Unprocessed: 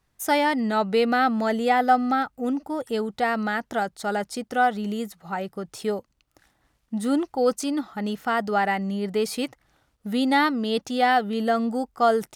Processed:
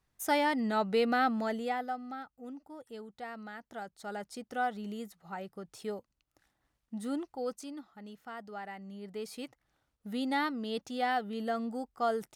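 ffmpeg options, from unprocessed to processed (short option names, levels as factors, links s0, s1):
-af "volume=2.99,afade=t=out:st=1.25:d=0.69:silence=0.251189,afade=t=in:st=3.6:d=0.87:silence=0.421697,afade=t=out:st=7.01:d=0.91:silence=0.375837,afade=t=in:st=8.72:d=1.38:silence=0.354813"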